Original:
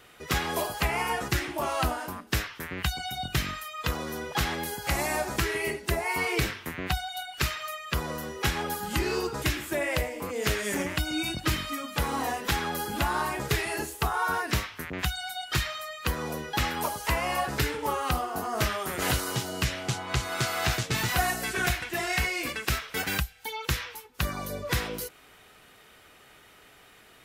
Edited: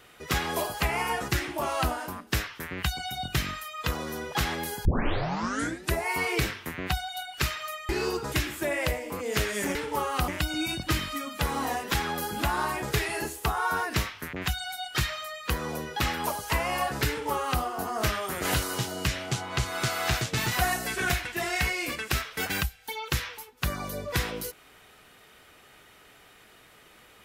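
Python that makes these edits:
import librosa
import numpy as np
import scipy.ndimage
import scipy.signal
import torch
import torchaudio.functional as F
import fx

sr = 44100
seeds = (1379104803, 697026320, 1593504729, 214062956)

y = fx.edit(x, sr, fx.tape_start(start_s=4.85, length_s=1.09),
    fx.cut(start_s=7.89, length_s=1.1),
    fx.duplicate(start_s=17.66, length_s=0.53, to_s=10.85), tone=tone)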